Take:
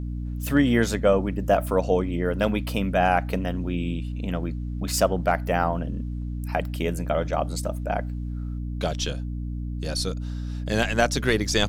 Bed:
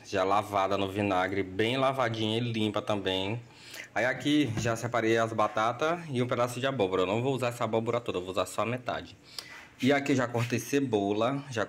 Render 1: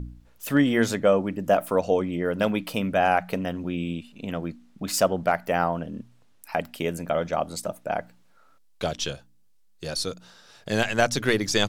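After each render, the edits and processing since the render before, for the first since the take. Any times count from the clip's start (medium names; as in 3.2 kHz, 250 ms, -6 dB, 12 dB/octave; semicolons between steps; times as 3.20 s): de-hum 60 Hz, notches 5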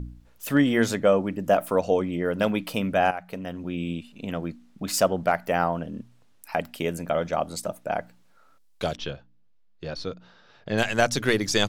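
3.11–3.90 s: fade in, from -14 dB; 8.96–10.78 s: distance through air 240 m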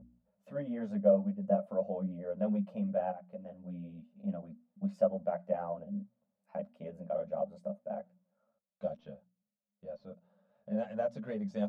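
two resonant band-passes 340 Hz, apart 1.5 oct; three-phase chorus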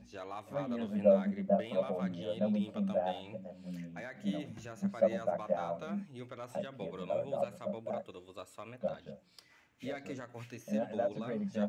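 add bed -17.5 dB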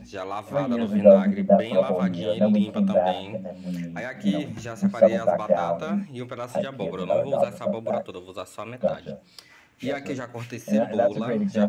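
trim +12 dB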